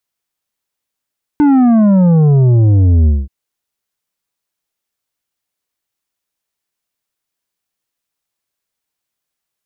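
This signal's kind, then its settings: sub drop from 300 Hz, over 1.88 s, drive 8 dB, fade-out 0.21 s, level -7 dB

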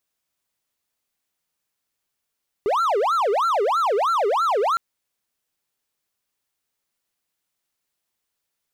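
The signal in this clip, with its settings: siren wail 394–1370 Hz 3.1/s triangle -15.5 dBFS 2.11 s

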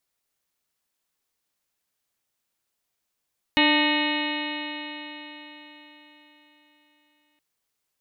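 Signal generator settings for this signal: stretched partials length 3.82 s, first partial 296 Hz, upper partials -8/-4/-13.5/-18.5/-3/-4/-5.5/-2/-17/-7/-13 dB, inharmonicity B 0.0024, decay 4.36 s, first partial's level -20.5 dB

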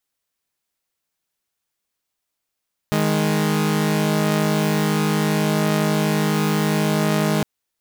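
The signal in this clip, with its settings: chord D#3/G#3 saw, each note -17.5 dBFS 4.51 s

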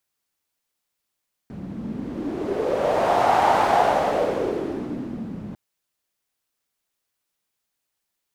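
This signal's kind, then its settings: wind-like swept noise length 4.05 s, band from 200 Hz, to 800 Hz, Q 3.6, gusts 1, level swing 15.5 dB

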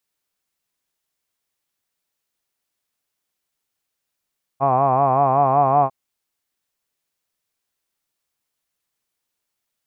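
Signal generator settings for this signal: formant-synthesis vowel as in hod, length 1.30 s, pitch 132 Hz, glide +1 st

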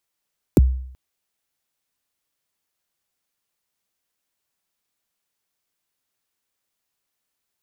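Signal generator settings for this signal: kick drum length 0.38 s, from 450 Hz, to 64 Hz, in 25 ms, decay 0.65 s, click on, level -6.5 dB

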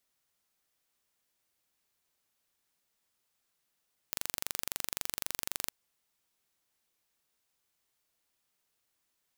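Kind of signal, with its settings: pulse train 23.8/s, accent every 0, -6 dBFS 1.56 s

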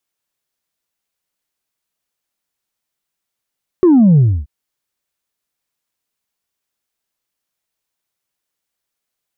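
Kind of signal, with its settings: sub drop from 380 Hz, over 0.63 s, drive 1 dB, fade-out 0.28 s, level -6 dB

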